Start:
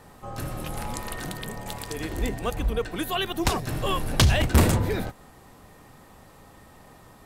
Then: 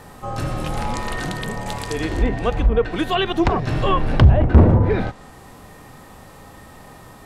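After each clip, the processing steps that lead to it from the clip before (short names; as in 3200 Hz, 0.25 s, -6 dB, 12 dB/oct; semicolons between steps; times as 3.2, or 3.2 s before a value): treble ducked by the level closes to 830 Hz, closed at -17.5 dBFS; harmonic-percussive split harmonic +5 dB; gain +5 dB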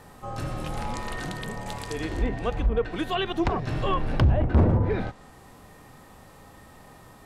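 hard clip -7 dBFS, distortion -17 dB; gain -7 dB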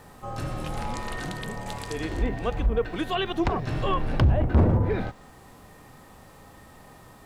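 requantised 12-bit, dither triangular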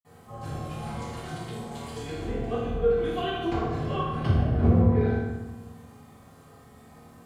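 reverb RT60 1.1 s, pre-delay 46 ms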